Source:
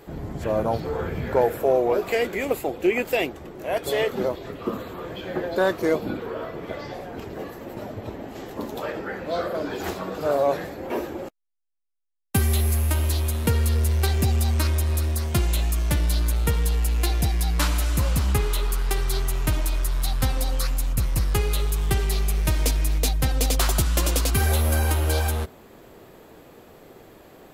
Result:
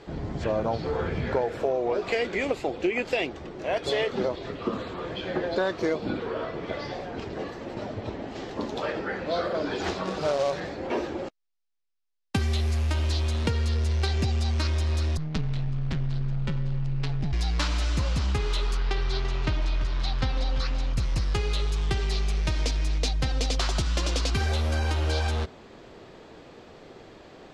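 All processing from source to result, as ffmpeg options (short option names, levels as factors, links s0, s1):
-filter_complex "[0:a]asettb=1/sr,asplit=3[s0][s1][s2];[s0]atrim=end=10.054[s3];[s1]atrim=start=10.05:end=10.6,asetpts=PTS-STARTPTS,afade=t=in:d=0.004:c=qsin,afade=t=out:st=0.546:d=0.004:c=qsin,asubboost=boost=8:cutoff=160,aecho=1:1:5.3:0.32,atrim=end_sample=24255,acrusher=bits=3:mode=log:mix=0:aa=0.000001[s4];[s2]atrim=start=10.596[s5];[s3][s4]acrossfade=d=0.004:c1=hsin:c2=qsin[s6];[s6][s5]acrossfade=d=0.004:c1=qsin:c2=hsin,asettb=1/sr,asplit=3[s7][s8][s9];[s7]atrim=end=15.174[s10];[s8]atrim=start=15.17:end=17.33,asetpts=PTS-STARTPTS,afade=t=in:d=0.004:c=qsin,afade=t=out:st=2.156:d=0.004:c=qsin,equalizer=f=630:w=0.33:g=-6,adynamicsmooth=sensitivity=5:basefreq=550,aeval=exprs='val(0)*sin(2*PI*78*n/s)':c=same[s11];[s9]atrim=start=17.326[s12];[s10][s11]acrossfade=d=0.004:c1=hsin:c2=qsin[s13];[s13][s12]acrossfade=d=0.004:c1=qsin:c2=hsin,asettb=1/sr,asplit=3[s14][s15][s16];[s14]atrim=end=18.774[s17];[s15]atrim=start=18.77:end=20.94,asetpts=PTS-STARTPTS,afade=t=in:d=0.004:c=qsin,afade=t=out:st=2.166:d=0.004:c=qsin,lowpass=4400,aecho=1:1:338:0.251,atrim=end_sample=95697[s18];[s16]atrim=start=20.936[s19];[s17][s18]acrossfade=d=0.004:c1=hsin:c2=qsin[s20];[s20][s19]acrossfade=d=0.004:c1=qsin:c2=hsin,lowpass=f=5300:w=0.5412,lowpass=f=5300:w=1.3066,aemphasis=mode=production:type=50kf,acompressor=threshold=0.0794:ratio=6"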